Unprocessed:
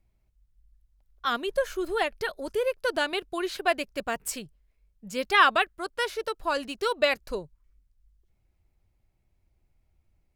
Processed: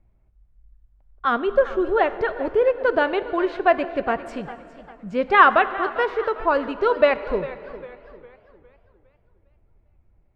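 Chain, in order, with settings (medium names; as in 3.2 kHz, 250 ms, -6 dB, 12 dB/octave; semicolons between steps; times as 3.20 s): low-pass 1.5 kHz 12 dB/octave; plate-style reverb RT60 2.5 s, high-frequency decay 0.85×, DRR 13 dB; modulated delay 404 ms, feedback 41%, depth 135 cents, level -16 dB; trim +8.5 dB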